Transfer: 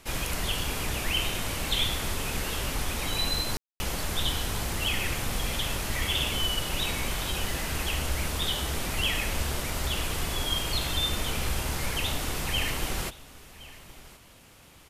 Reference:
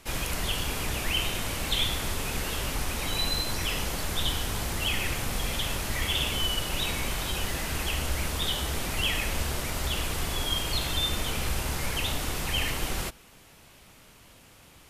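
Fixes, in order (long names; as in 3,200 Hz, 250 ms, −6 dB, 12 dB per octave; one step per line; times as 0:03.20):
click removal
ambience match 0:03.57–0:03.80
echo removal 1,068 ms −19.5 dB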